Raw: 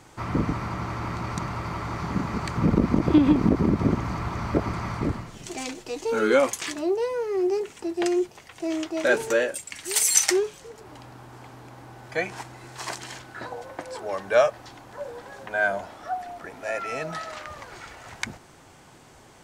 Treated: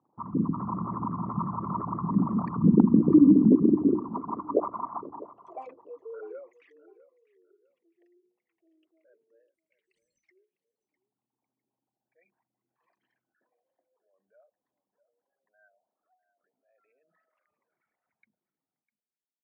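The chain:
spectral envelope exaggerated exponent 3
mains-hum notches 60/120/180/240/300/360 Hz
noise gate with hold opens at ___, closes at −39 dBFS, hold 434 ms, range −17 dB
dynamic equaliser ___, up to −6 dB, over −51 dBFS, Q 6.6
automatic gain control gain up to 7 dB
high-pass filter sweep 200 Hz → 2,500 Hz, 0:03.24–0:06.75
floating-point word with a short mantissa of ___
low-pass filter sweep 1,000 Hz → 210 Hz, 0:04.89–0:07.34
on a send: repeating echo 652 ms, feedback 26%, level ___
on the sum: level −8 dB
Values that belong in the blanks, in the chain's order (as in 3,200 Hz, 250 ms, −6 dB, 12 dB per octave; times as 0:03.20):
−38 dBFS, 840 Hz, 8 bits, −18.5 dB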